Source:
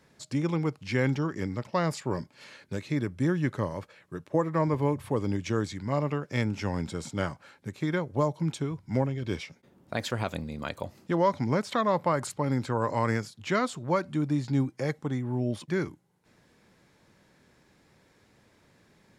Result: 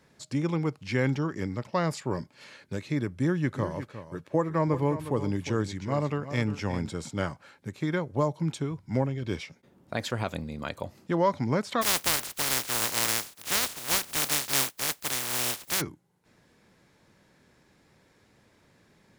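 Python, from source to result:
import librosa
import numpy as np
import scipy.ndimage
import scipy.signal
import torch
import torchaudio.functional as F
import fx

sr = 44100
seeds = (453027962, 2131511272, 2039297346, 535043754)

y = fx.echo_single(x, sr, ms=357, db=-12.0, at=(3.48, 6.88), fade=0.02)
y = fx.spec_flatten(y, sr, power=0.11, at=(11.81, 15.8), fade=0.02)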